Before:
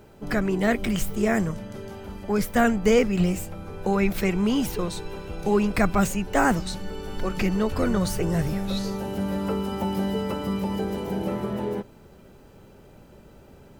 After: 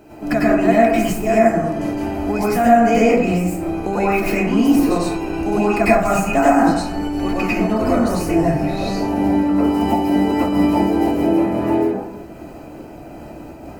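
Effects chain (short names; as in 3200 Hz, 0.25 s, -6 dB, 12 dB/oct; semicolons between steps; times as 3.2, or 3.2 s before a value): 8.32–9.55 high shelf 6300 Hz -7.5 dB; reverb RT60 0.70 s, pre-delay 87 ms, DRR -9.5 dB; compressor 2:1, threshold -23 dBFS, peak gain reduction 10.5 dB; low shelf 430 Hz -5 dB; notch 3500 Hz, Q 6.9; small resonant body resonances 300/670/2500 Hz, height 16 dB, ringing for 65 ms; noise-modulated level, depth 50%; gain +5.5 dB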